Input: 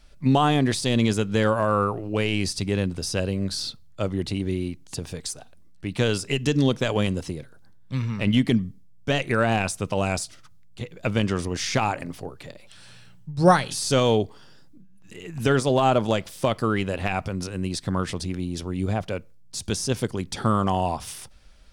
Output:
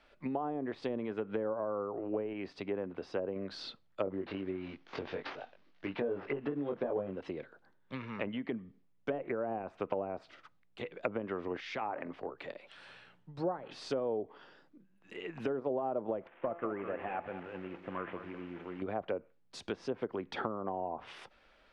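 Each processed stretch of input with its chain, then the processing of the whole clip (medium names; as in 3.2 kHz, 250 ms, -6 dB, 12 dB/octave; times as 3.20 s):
2.33–3.36 s: low-pass 1.2 kHz 6 dB/octave + tilt EQ +1.5 dB/octave
4.05–7.16 s: CVSD coder 32 kbps + doubling 21 ms -3 dB
11.60–12.38 s: compression 12:1, threshold -28 dBFS + three bands expanded up and down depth 70%
16.27–18.82 s: CVSD coder 16 kbps + feedback comb 170 Hz, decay 0.43 s + bit-crushed delay 201 ms, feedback 35%, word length 8-bit, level -11 dB
whole clip: compression 10:1, threshold -26 dBFS; three-band isolator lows -21 dB, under 280 Hz, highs -23 dB, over 3.2 kHz; low-pass that closes with the level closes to 660 Hz, closed at -29.5 dBFS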